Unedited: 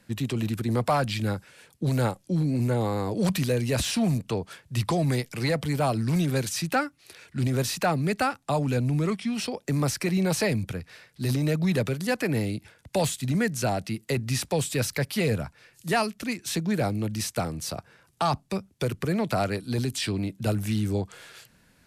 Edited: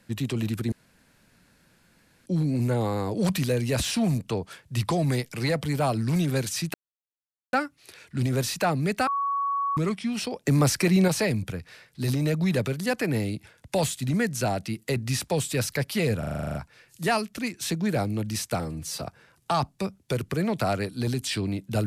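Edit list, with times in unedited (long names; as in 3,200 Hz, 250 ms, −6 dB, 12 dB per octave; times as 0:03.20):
0:00.72–0:02.26: fill with room tone
0:06.74: splice in silence 0.79 s
0:08.28–0:08.98: beep over 1,120 Hz −23.5 dBFS
0:09.66–0:10.29: clip gain +4.5 dB
0:15.40: stutter 0.04 s, 10 plays
0:17.45–0:17.73: time-stretch 1.5×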